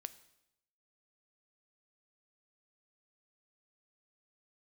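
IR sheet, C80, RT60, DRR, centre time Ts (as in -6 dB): 18.5 dB, 0.85 s, 13.0 dB, 4 ms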